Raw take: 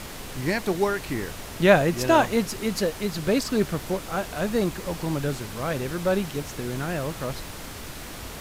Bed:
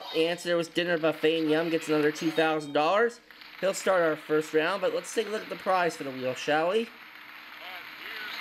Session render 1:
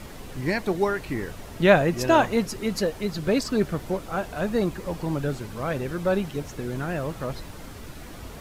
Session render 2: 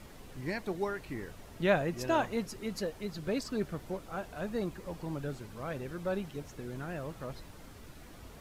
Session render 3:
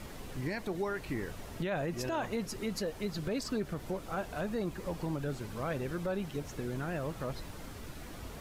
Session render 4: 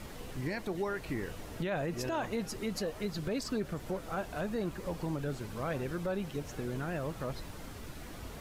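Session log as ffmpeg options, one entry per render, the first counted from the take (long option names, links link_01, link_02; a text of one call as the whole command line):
ffmpeg -i in.wav -af "afftdn=noise_reduction=8:noise_floor=-38" out.wav
ffmpeg -i in.wav -af "volume=-10.5dB" out.wav
ffmpeg -i in.wav -filter_complex "[0:a]asplit=2[link_01][link_02];[link_02]acompressor=threshold=-40dB:ratio=6,volume=-1dB[link_03];[link_01][link_03]amix=inputs=2:normalize=0,alimiter=level_in=1.5dB:limit=-24dB:level=0:latency=1:release=55,volume=-1.5dB" out.wav
ffmpeg -i in.wav -i bed.wav -filter_complex "[1:a]volume=-29.5dB[link_01];[0:a][link_01]amix=inputs=2:normalize=0" out.wav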